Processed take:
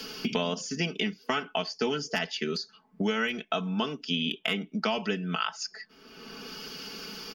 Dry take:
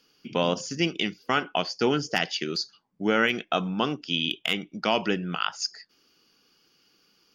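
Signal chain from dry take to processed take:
comb filter 4.6 ms, depth 78%
multiband upward and downward compressor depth 100%
level −6.5 dB

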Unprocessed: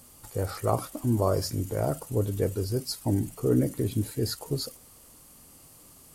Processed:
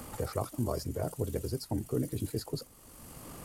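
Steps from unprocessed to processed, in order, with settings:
time stretch by overlap-add 0.56×, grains 42 ms
multiband upward and downward compressor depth 70%
level −5.5 dB

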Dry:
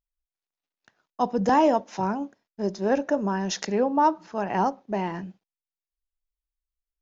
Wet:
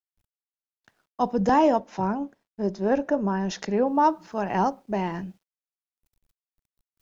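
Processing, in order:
low-shelf EQ 82 Hz +10 dB
bit-depth reduction 12 bits, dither none
high-shelf EQ 3,900 Hz −2.5 dB, from 0:01.79 −9 dB, from 0:03.87 +2 dB

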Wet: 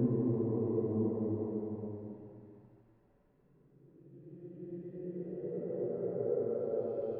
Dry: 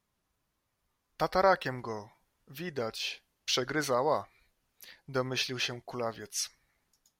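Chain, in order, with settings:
wavefolder on the positive side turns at −22.5 dBFS
low-pass filter sweep 160 Hz → 850 Hz, 0:00.51–0:04.04
on a send: delay with a high-pass on its return 99 ms, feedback 81%, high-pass 3,000 Hz, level −8.5 dB
on the sum: sample-and-hold tremolo 1.7 Hz, depth 90%
extreme stretch with random phases 6.4×, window 0.50 s, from 0:01.80
level +5.5 dB

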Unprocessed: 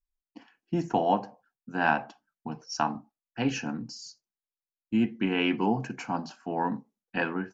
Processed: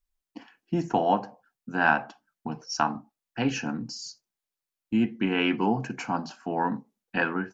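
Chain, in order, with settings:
dynamic equaliser 1,400 Hz, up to +5 dB, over −42 dBFS, Q 2.5
in parallel at −1.5 dB: downward compressor, threshold −39 dBFS, peak gain reduction 21 dB

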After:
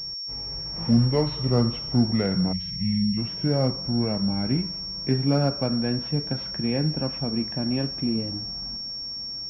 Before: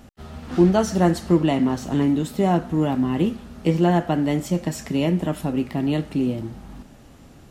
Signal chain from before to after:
gliding playback speed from 64% → 94%
gain on a spectral selection 0:02.53–0:03.18, 230–1,800 Hz −28 dB
switching amplifier with a slow clock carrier 5,500 Hz
level −4 dB

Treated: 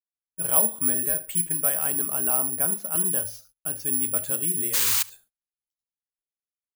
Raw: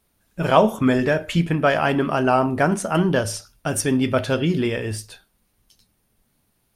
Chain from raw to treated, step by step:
0:01.90–0:04.17: notch filter 1,900 Hz, Q 10
0:04.73–0:05.03: sound drawn into the spectrogram noise 860–11,000 Hz −13 dBFS
single-tap delay 73 ms −22.5 dB
bad sample-rate conversion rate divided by 4×, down filtered, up zero stuff
high-shelf EQ 3,400 Hz +6 dB
noise gate −37 dBFS, range −30 dB
level −16.5 dB

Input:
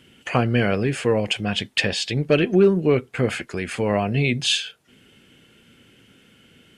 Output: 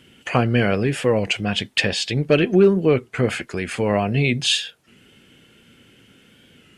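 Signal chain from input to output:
wow of a warped record 33 1/3 rpm, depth 100 cents
level +1.5 dB

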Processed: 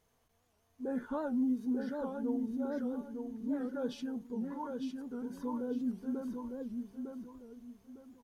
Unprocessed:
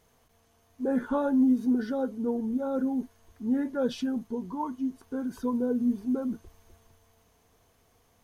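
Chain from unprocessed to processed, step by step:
on a send: repeating echo 905 ms, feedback 30%, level −5 dB
on the sum: wow of a warped record 78 rpm, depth 160 cents
level −9 dB

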